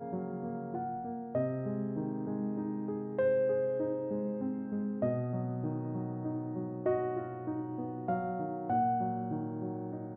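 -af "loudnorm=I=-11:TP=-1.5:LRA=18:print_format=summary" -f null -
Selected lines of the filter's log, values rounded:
Input Integrated:    -35.0 LUFS
Input True Peak:     -19.7 dBTP
Input LRA:             2.2 LU
Input Threshold:     -45.0 LUFS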